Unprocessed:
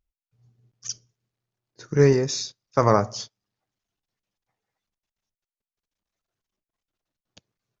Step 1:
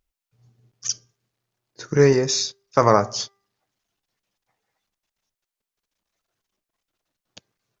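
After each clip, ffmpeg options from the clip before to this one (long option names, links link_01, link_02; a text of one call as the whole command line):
ffmpeg -i in.wav -filter_complex "[0:a]lowshelf=frequency=240:gain=-6.5,asplit=2[link_01][link_02];[link_02]acompressor=threshold=-28dB:ratio=6,volume=-2dB[link_03];[link_01][link_03]amix=inputs=2:normalize=0,bandreject=frequency=396.5:width_type=h:width=4,bandreject=frequency=793:width_type=h:width=4,bandreject=frequency=1189.5:width_type=h:width=4,bandreject=frequency=1586:width_type=h:width=4,bandreject=frequency=1982.5:width_type=h:width=4,volume=2.5dB" out.wav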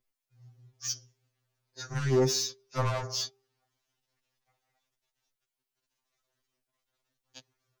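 ffmpeg -i in.wav -filter_complex "[0:a]acrossover=split=230[link_01][link_02];[link_02]acompressor=threshold=-20dB:ratio=2[link_03];[link_01][link_03]amix=inputs=2:normalize=0,asoftclip=type=tanh:threshold=-24dB,afftfilt=real='re*2.45*eq(mod(b,6),0)':imag='im*2.45*eq(mod(b,6),0)':win_size=2048:overlap=0.75" out.wav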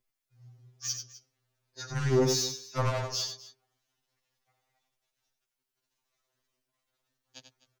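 ffmpeg -i in.wav -af "aecho=1:1:90|254:0.422|0.126" out.wav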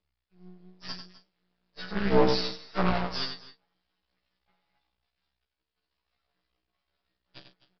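ffmpeg -i in.wav -filter_complex "[0:a]afreqshift=60,asplit=2[link_01][link_02];[link_02]adelay=38,volume=-10dB[link_03];[link_01][link_03]amix=inputs=2:normalize=0,aresample=11025,aeval=exprs='max(val(0),0)':channel_layout=same,aresample=44100,volume=6dB" out.wav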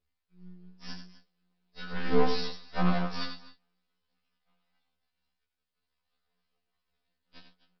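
ffmpeg -i in.wav -af "afftfilt=real='re*2*eq(mod(b,4),0)':imag='im*2*eq(mod(b,4),0)':win_size=2048:overlap=0.75" out.wav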